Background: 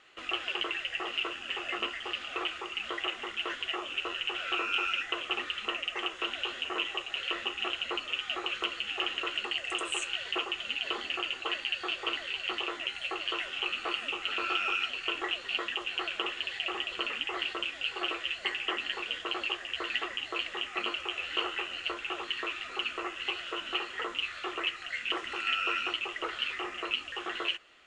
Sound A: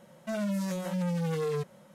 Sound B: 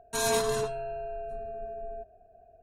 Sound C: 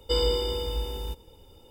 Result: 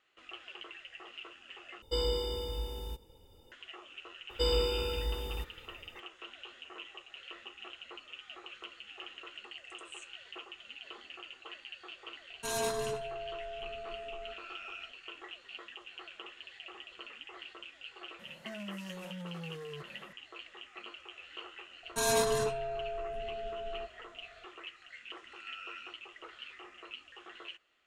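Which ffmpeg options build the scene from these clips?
-filter_complex "[3:a]asplit=2[s0][s1];[2:a]asplit=2[s2][s3];[0:a]volume=0.188[s4];[s2]aecho=1:1:65|130|195|260:0.141|0.0593|0.0249|0.0105[s5];[1:a]acompressor=threshold=0.00891:ratio=6:attack=3.2:release=140:knee=1:detection=peak[s6];[s4]asplit=2[s7][s8];[s7]atrim=end=1.824[s9];[s0]atrim=end=1.7,asetpts=PTS-STARTPTS,volume=0.447[s10];[s8]atrim=start=3.516[s11];[s1]atrim=end=1.7,asetpts=PTS-STARTPTS,volume=0.596,afade=t=in:d=0.004:c=hsin,afade=t=out:st=1.696:d=0.004:c=hsin,adelay=4300[s12];[s5]atrim=end=2.62,asetpts=PTS-STARTPTS,volume=0.447,afade=t=in:d=0.004:c=hsin,afade=t=out:st=2.616:d=0.004:c=hsin,adelay=12300[s13];[s6]atrim=end=1.94,asetpts=PTS-STARTPTS,volume=0.841,afade=t=in:d=0.004:c=hsin,afade=t=out:st=1.936:d=0.004:c=hsin,adelay=18190[s14];[s3]atrim=end=2.62,asetpts=PTS-STARTPTS,volume=0.841,afade=t=in:d=0.004:c=hsin,afade=t=out:st=2.616:d=0.004:c=hsin,adelay=21830[s15];[s9][s10]acrossfade=d=0.004:c1=hsin:c2=hsin[s16];[s16][s11]acrossfade=d=0.004:c1=hsin:c2=hsin[s17];[s17][s12][s13][s14][s15]amix=inputs=5:normalize=0"

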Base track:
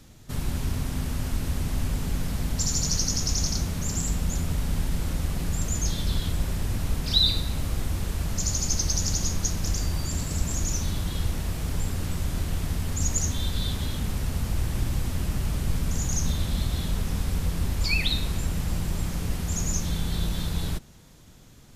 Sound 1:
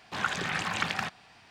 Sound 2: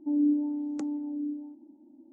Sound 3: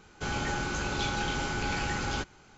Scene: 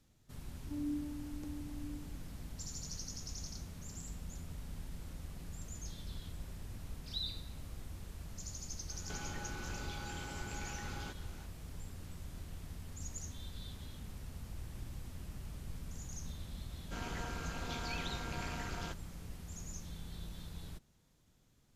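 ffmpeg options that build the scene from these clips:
-filter_complex "[3:a]asplit=2[s0][s1];[0:a]volume=0.112[s2];[s0]acompressor=threshold=0.00891:ratio=6:attack=3.2:release=140:knee=1:detection=peak[s3];[s1]aeval=exprs='val(0)*sin(2*PI*110*n/s)':c=same[s4];[2:a]atrim=end=2.12,asetpts=PTS-STARTPTS,volume=0.2,afade=t=in:d=0.004:c=hsin,afade=t=out:st=2.116:d=0.004:c=hsin,adelay=640[s5];[s3]atrim=end=2.57,asetpts=PTS-STARTPTS,volume=0.841,afade=t=in:d=0.004:c=hsin,afade=t=out:st=2.566:d=0.004:c=hsin,adelay=8890[s6];[s4]atrim=end=2.57,asetpts=PTS-STARTPTS,volume=0.376,afade=t=in:d=0.004:c=hsin,afade=t=out:st=2.566:d=0.004:c=hsin,adelay=16700[s7];[s2][s5][s6][s7]amix=inputs=4:normalize=0"

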